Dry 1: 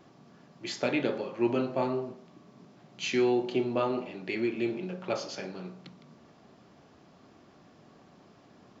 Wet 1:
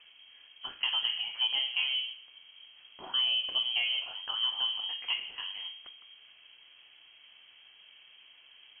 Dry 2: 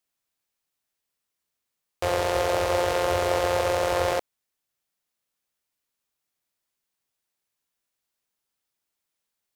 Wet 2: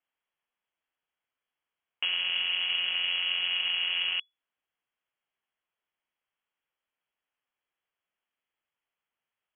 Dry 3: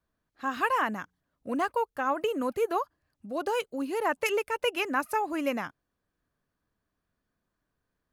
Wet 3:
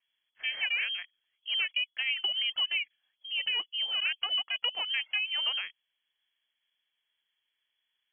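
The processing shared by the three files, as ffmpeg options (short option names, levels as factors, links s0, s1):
-filter_complex "[0:a]acrossover=split=160|1200[s0][s1][s2];[s0]acompressor=threshold=0.00794:ratio=4[s3];[s1]acompressor=threshold=0.0447:ratio=4[s4];[s2]acompressor=threshold=0.00708:ratio=4[s5];[s3][s4][s5]amix=inputs=3:normalize=0,lowpass=f=2900:t=q:w=0.5098,lowpass=f=2900:t=q:w=0.6013,lowpass=f=2900:t=q:w=0.9,lowpass=f=2900:t=q:w=2.563,afreqshift=-3400"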